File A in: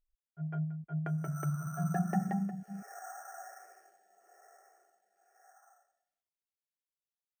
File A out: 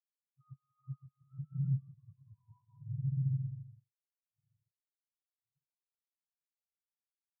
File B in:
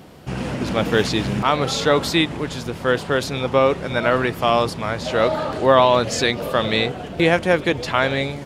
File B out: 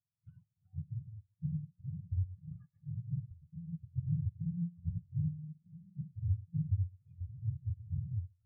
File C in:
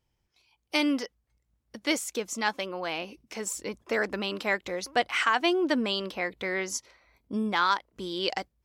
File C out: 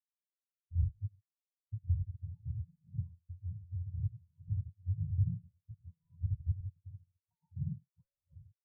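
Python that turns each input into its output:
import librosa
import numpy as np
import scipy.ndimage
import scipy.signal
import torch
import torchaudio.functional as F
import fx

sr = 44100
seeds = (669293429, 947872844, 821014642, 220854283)

p1 = fx.octave_mirror(x, sr, pivot_hz=440.0)
p2 = fx.noise_reduce_blind(p1, sr, reduce_db=15)
p3 = fx.gate_flip(p2, sr, shuts_db=-22.0, range_db=-28)
p4 = p3 + fx.echo_single(p3, sr, ms=98, db=-11.5, dry=0)
p5 = fx.rev_gated(p4, sr, seeds[0], gate_ms=160, shape='rising', drr_db=9.0)
p6 = fx.leveller(p5, sr, passes=3)
p7 = fx.low_shelf(p6, sr, hz=380.0, db=3.0)
p8 = fx.over_compress(p7, sr, threshold_db=-31.0, ratio=-0.5)
p9 = fx.curve_eq(p8, sr, hz=(170.0, 280.0, 2000.0), db=(0, -30, -14))
p10 = fx.spectral_expand(p9, sr, expansion=2.5)
y = p10 * 10.0 ** (1.0 / 20.0)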